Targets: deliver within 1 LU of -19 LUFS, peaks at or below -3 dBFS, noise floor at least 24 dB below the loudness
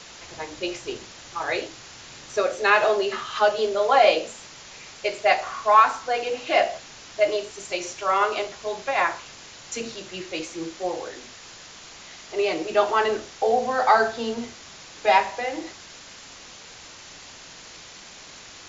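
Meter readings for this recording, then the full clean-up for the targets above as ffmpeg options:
noise floor -44 dBFS; noise floor target -48 dBFS; loudness -23.5 LUFS; peak -4.5 dBFS; loudness target -19.0 LUFS
-> -af "afftdn=nr=6:nf=-44"
-af "volume=4.5dB,alimiter=limit=-3dB:level=0:latency=1"

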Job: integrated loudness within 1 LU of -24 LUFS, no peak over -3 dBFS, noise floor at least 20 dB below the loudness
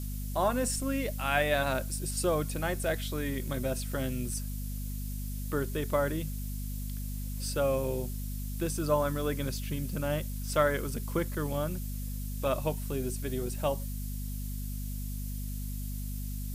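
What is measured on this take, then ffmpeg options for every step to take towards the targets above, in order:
hum 50 Hz; harmonics up to 250 Hz; hum level -34 dBFS; noise floor -36 dBFS; noise floor target -53 dBFS; loudness -33.0 LUFS; peak -13.5 dBFS; loudness target -24.0 LUFS
-> -af "bandreject=f=50:t=h:w=4,bandreject=f=100:t=h:w=4,bandreject=f=150:t=h:w=4,bandreject=f=200:t=h:w=4,bandreject=f=250:t=h:w=4"
-af "afftdn=nr=17:nf=-36"
-af "volume=9dB"

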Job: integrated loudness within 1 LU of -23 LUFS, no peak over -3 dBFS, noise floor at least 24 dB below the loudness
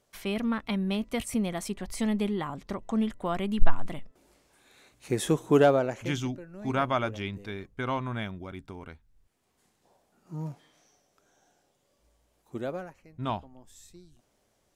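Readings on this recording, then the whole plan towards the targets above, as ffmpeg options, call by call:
loudness -30.0 LUFS; peak -5.5 dBFS; loudness target -23.0 LUFS
-> -af "volume=7dB,alimiter=limit=-3dB:level=0:latency=1"

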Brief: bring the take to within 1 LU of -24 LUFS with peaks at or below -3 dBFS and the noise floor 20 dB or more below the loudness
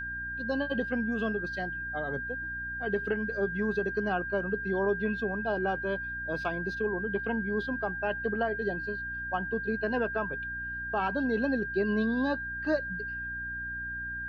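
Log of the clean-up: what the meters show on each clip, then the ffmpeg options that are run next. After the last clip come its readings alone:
hum 60 Hz; harmonics up to 300 Hz; hum level -44 dBFS; steady tone 1600 Hz; tone level -34 dBFS; loudness -31.5 LUFS; peak -17.0 dBFS; loudness target -24.0 LUFS
-> -af "bandreject=f=60:t=h:w=6,bandreject=f=120:t=h:w=6,bandreject=f=180:t=h:w=6,bandreject=f=240:t=h:w=6,bandreject=f=300:t=h:w=6"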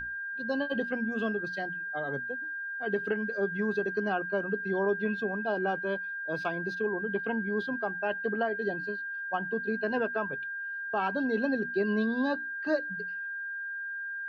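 hum none; steady tone 1600 Hz; tone level -34 dBFS
-> -af "bandreject=f=1.6k:w=30"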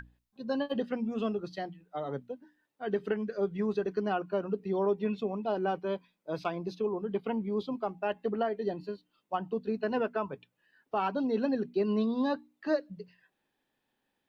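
steady tone none; loudness -33.0 LUFS; peak -18.5 dBFS; loudness target -24.0 LUFS
-> -af "volume=9dB"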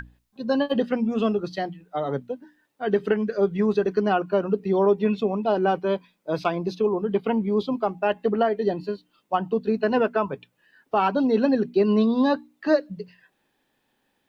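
loudness -24.0 LUFS; peak -9.5 dBFS; noise floor -72 dBFS

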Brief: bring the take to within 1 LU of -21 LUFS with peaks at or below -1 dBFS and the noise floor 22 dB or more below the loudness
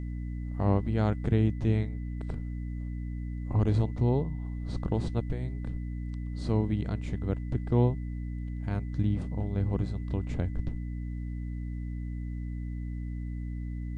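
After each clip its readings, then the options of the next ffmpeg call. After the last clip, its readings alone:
hum 60 Hz; harmonics up to 300 Hz; hum level -32 dBFS; steady tone 2000 Hz; tone level -59 dBFS; loudness -32.0 LUFS; peak -10.5 dBFS; loudness target -21.0 LUFS
-> -af "bandreject=f=60:t=h:w=4,bandreject=f=120:t=h:w=4,bandreject=f=180:t=h:w=4,bandreject=f=240:t=h:w=4,bandreject=f=300:t=h:w=4"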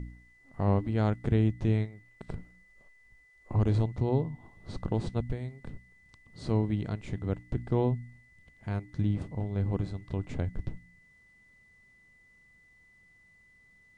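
hum none; steady tone 2000 Hz; tone level -59 dBFS
-> -af "bandreject=f=2k:w=30"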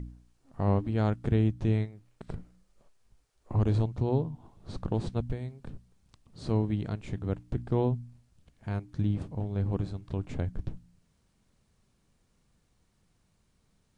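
steady tone none; loudness -31.5 LUFS; peak -12.0 dBFS; loudness target -21.0 LUFS
-> -af "volume=10.5dB"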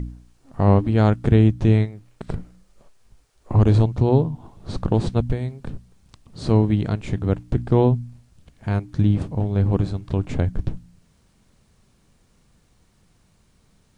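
loudness -21.0 LUFS; peak -1.5 dBFS; noise floor -60 dBFS

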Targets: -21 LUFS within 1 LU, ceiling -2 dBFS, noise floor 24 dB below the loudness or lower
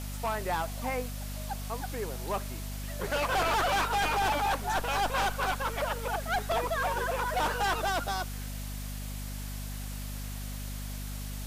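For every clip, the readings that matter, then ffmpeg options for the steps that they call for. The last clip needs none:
hum 50 Hz; harmonics up to 250 Hz; hum level -35 dBFS; noise floor -38 dBFS; noise floor target -56 dBFS; loudness -31.5 LUFS; peak -20.5 dBFS; loudness target -21.0 LUFS
-> -af "bandreject=f=50:t=h:w=4,bandreject=f=100:t=h:w=4,bandreject=f=150:t=h:w=4,bandreject=f=200:t=h:w=4,bandreject=f=250:t=h:w=4"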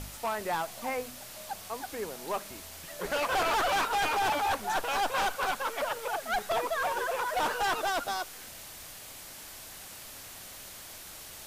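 hum none; noise floor -46 dBFS; noise floor target -55 dBFS
-> -af "afftdn=nr=9:nf=-46"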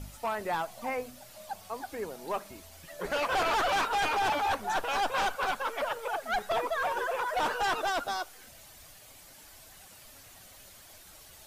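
noise floor -53 dBFS; noise floor target -55 dBFS
-> -af "afftdn=nr=6:nf=-53"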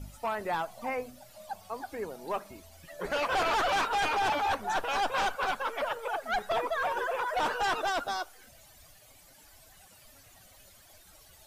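noise floor -57 dBFS; loudness -31.0 LUFS; peak -22.5 dBFS; loudness target -21.0 LUFS
-> -af "volume=10dB"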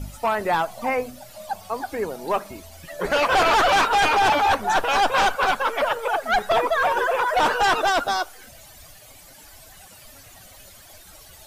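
loudness -21.0 LUFS; peak -12.5 dBFS; noise floor -47 dBFS

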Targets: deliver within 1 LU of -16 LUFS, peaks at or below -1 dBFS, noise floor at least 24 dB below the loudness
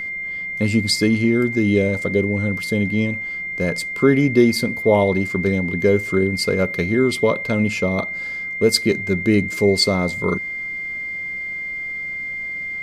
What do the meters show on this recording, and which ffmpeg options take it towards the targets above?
steady tone 2100 Hz; tone level -25 dBFS; loudness -19.5 LUFS; peak -2.5 dBFS; loudness target -16.0 LUFS
-> -af "bandreject=f=2.1k:w=30"
-af "volume=3.5dB,alimiter=limit=-1dB:level=0:latency=1"

